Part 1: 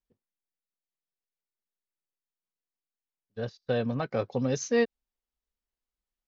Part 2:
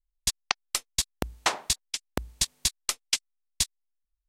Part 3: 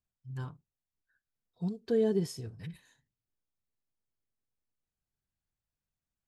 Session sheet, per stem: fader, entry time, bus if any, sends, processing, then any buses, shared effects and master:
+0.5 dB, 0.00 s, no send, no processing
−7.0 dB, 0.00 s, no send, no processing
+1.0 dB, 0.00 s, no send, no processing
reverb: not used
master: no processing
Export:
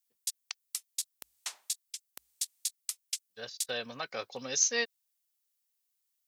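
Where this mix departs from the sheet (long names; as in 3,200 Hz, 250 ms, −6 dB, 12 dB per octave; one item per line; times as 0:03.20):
stem 1 +0.5 dB → +12.5 dB
stem 3: muted
master: extra first difference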